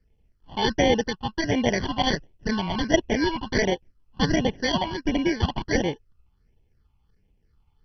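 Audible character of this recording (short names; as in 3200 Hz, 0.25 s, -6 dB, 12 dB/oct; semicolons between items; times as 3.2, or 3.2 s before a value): aliases and images of a low sample rate 1300 Hz, jitter 0%; phasing stages 6, 1.4 Hz, lowest notch 450–1400 Hz; MP2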